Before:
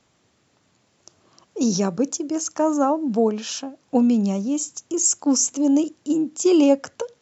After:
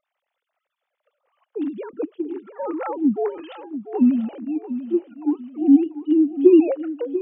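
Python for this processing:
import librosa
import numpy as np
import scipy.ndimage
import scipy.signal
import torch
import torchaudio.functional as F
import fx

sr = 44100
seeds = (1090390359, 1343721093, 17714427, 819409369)

p1 = fx.sine_speech(x, sr)
p2 = fx.dynamic_eq(p1, sr, hz=270.0, q=4.6, threshold_db=-25.0, ratio=4.0, max_db=3)
p3 = p2 + fx.echo_feedback(p2, sr, ms=691, feedback_pct=33, wet_db=-12, dry=0)
y = p3 * librosa.db_to_amplitude(-1.0)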